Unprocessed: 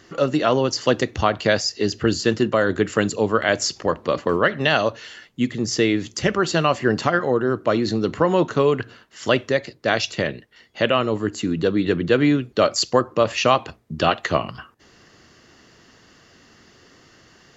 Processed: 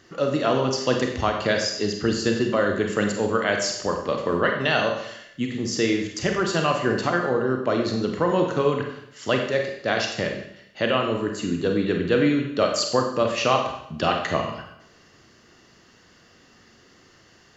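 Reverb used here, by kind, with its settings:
four-comb reverb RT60 0.75 s, combs from 31 ms, DRR 2.5 dB
level −4.5 dB

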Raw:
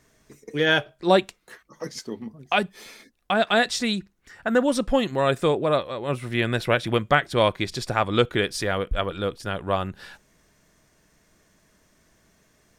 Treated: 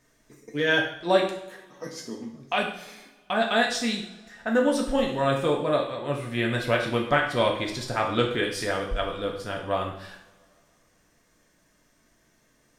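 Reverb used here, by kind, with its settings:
coupled-rooms reverb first 0.63 s, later 2.9 s, from −25 dB, DRR −0.5 dB
level −5.5 dB

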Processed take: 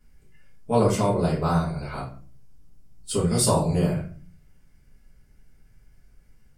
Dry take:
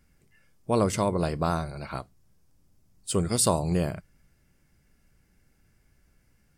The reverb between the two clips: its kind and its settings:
rectangular room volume 32 cubic metres, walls mixed, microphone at 1.3 metres
level −6 dB

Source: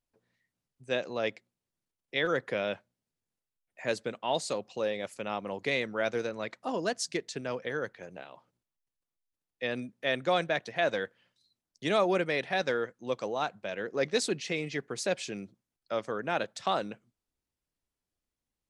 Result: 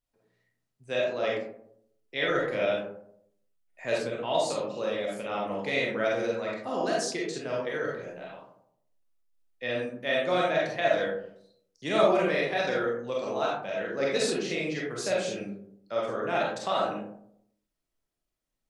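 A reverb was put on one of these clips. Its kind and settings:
comb and all-pass reverb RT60 0.71 s, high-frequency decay 0.35×, pre-delay 5 ms, DRR −4.5 dB
level −3 dB

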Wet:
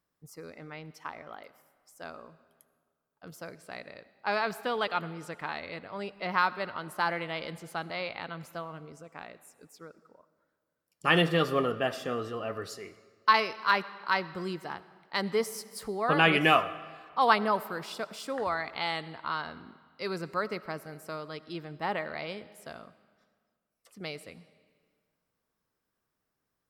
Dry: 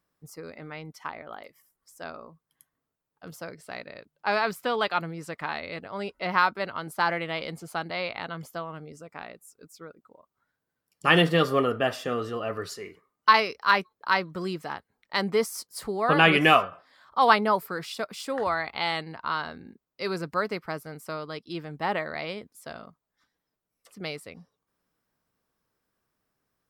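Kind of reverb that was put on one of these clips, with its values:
comb and all-pass reverb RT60 1.8 s, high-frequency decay 0.85×, pre-delay 40 ms, DRR 16.5 dB
level −4 dB

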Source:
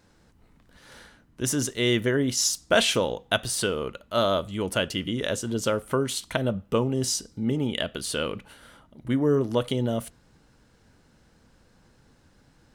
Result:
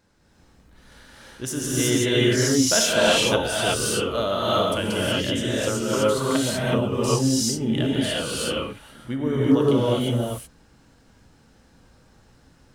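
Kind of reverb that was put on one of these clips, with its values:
reverb whose tail is shaped and stops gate 400 ms rising, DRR −7.5 dB
level −4 dB

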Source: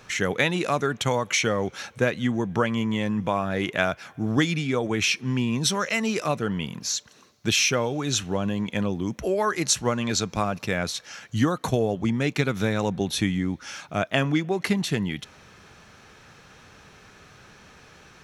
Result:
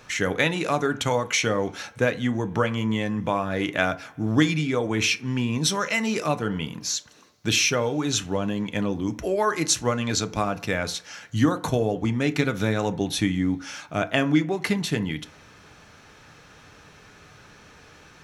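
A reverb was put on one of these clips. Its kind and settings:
feedback delay network reverb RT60 0.44 s, low-frequency decay 0.95×, high-frequency decay 0.5×, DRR 9.5 dB

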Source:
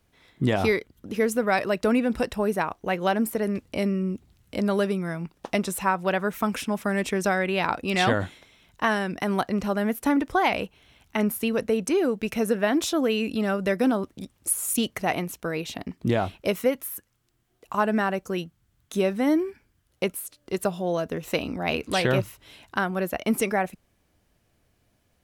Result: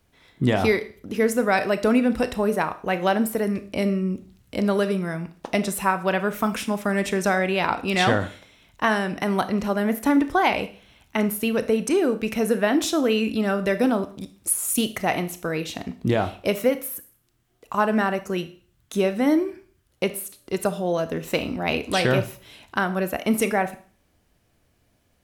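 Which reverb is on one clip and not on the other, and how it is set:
four-comb reverb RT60 0.44 s, combs from 25 ms, DRR 11 dB
level +2 dB

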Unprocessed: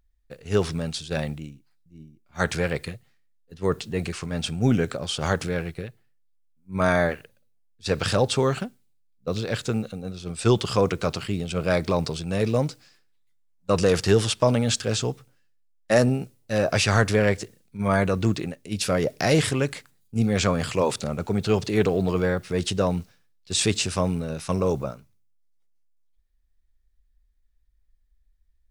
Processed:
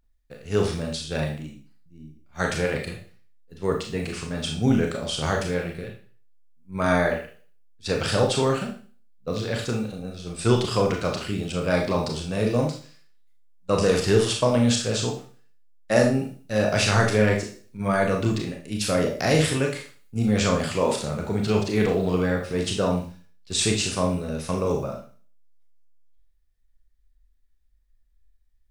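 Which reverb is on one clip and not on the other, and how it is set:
four-comb reverb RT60 0.41 s, combs from 26 ms, DRR 1 dB
level −2 dB

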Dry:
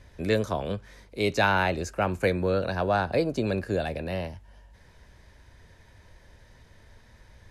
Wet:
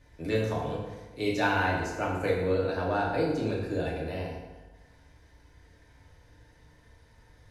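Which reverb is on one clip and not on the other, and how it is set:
feedback delay network reverb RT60 1.2 s, low-frequency decay 1×, high-frequency decay 0.7×, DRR −5 dB
level −9.5 dB

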